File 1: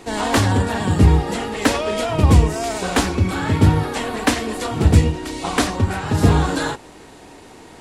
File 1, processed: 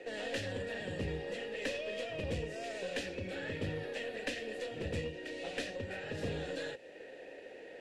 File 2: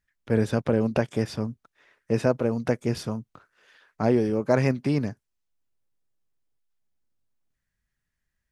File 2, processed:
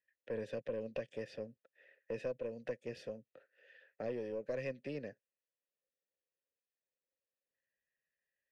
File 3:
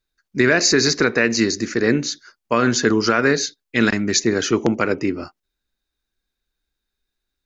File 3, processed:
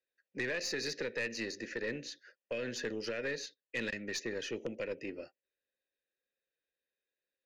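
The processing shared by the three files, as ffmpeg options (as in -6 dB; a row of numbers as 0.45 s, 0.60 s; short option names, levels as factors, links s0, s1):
-filter_complex "[0:a]asplit=3[s0][s1][s2];[s0]bandpass=f=530:t=q:w=8,volume=1[s3];[s1]bandpass=f=1840:t=q:w=8,volume=0.501[s4];[s2]bandpass=f=2480:t=q:w=8,volume=0.355[s5];[s3][s4][s5]amix=inputs=3:normalize=0,acrossover=split=200|3000[s6][s7][s8];[s7]acompressor=threshold=0.00447:ratio=3[s9];[s6][s9][s8]amix=inputs=3:normalize=0,aeval=exprs='(tanh(39.8*val(0)+0.25)-tanh(0.25))/39.8':c=same,volume=1.78"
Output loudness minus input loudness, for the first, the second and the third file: -21.0 LU, -17.5 LU, -20.0 LU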